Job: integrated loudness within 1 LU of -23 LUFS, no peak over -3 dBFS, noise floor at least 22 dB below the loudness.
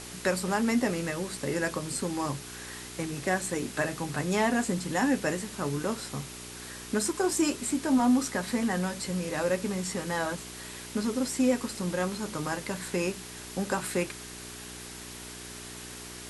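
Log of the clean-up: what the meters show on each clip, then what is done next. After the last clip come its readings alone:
hum 60 Hz; harmonics up to 420 Hz; hum level -46 dBFS; noise floor -43 dBFS; noise floor target -52 dBFS; loudness -30.0 LUFS; peak -13.0 dBFS; loudness target -23.0 LUFS
-> de-hum 60 Hz, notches 7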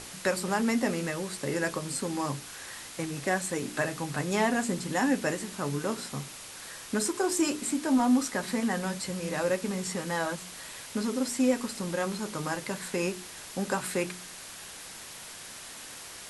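hum none; noise floor -44 dBFS; noise floor target -53 dBFS
-> denoiser 9 dB, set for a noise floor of -44 dBFS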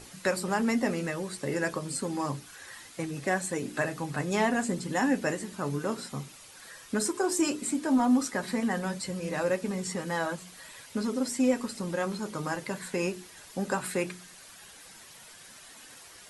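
noise floor -51 dBFS; noise floor target -53 dBFS
-> denoiser 6 dB, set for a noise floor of -51 dBFS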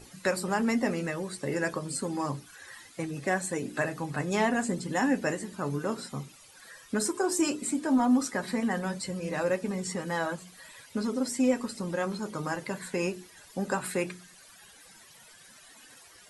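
noise floor -54 dBFS; loudness -30.5 LUFS; peak -13.0 dBFS; loudness target -23.0 LUFS
-> gain +7.5 dB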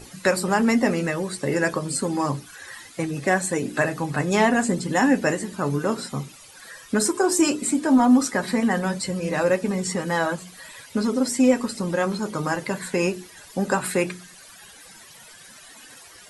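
loudness -23.0 LUFS; peak -5.5 dBFS; noise floor -47 dBFS

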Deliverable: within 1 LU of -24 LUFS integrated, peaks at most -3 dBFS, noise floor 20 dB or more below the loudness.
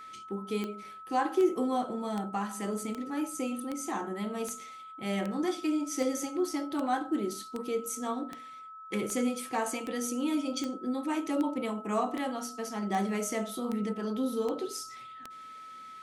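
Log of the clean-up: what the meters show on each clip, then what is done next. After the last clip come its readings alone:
clicks 21; steady tone 1300 Hz; tone level -44 dBFS; loudness -33.0 LUFS; peak -16.0 dBFS; loudness target -24.0 LUFS
-> de-click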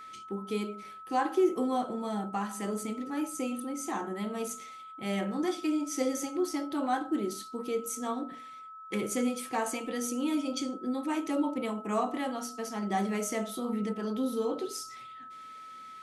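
clicks 1; steady tone 1300 Hz; tone level -44 dBFS
-> notch 1300 Hz, Q 30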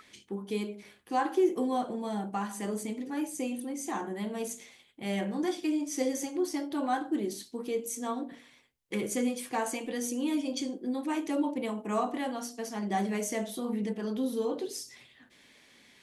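steady tone none; loudness -33.0 LUFS; peak -16.5 dBFS; loudness target -24.0 LUFS
-> gain +9 dB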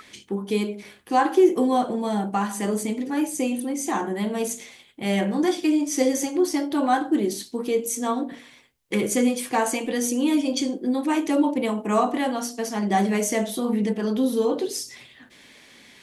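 loudness -24.0 LUFS; peak -7.5 dBFS; noise floor -52 dBFS

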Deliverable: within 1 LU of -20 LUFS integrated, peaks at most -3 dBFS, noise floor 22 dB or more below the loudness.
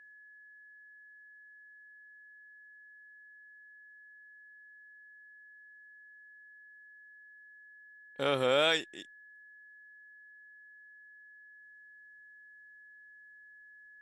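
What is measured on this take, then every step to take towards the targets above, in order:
steady tone 1700 Hz; tone level -53 dBFS; loudness -29.5 LUFS; peak -14.5 dBFS; loudness target -20.0 LUFS
-> notch 1700 Hz, Q 30; gain +9.5 dB

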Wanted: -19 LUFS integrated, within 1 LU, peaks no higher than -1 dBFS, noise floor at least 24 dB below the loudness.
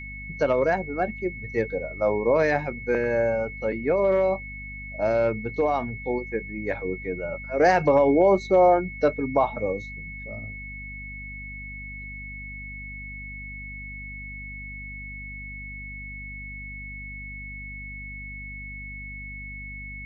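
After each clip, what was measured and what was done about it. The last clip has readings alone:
hum 50 Hz; harmonics up to 250 Hz; hum level -38 dBFS; steady tone 2200 Hz; tone level -37 dBFS; loudness -27.0 LUFS; peak -8.5 dBFS; loudness target -19.0 LUFS
-> notches 50/100/150/200/250 Hz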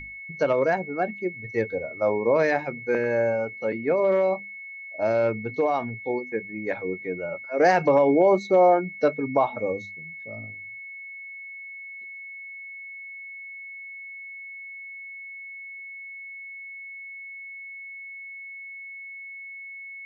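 hum none; steady tone 2200 Hz; tone level -37 dBFS
-> notch 2200 Hz, Q 30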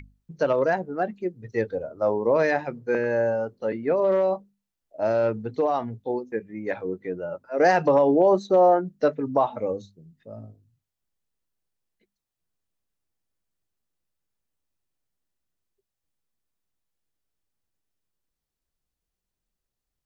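steady tone none; loudness -24.0 LUFS; peak -8.5 dBFS; loudness target -19.0 LUFS
-> gain +5 dB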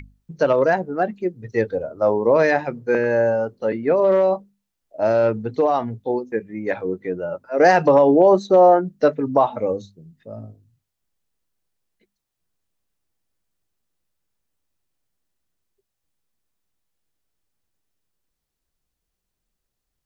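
loudness -19.0 LUFS; peak -3.5 dBFS; noise floor -80 dBFS

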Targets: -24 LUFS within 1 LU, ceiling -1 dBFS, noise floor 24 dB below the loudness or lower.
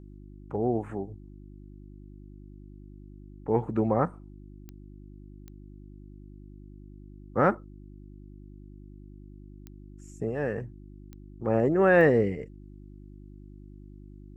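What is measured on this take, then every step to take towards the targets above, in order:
clicks 5; hum 50 Hz; harmonics up to 350 Hz; hum level -44 dBFS; loudness -27.0 LUFS; peak -9.0 dBFS; loudness target -24.0 LUFS
-> de-click; de-hum 50 Hz, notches 7; gain +3 dB

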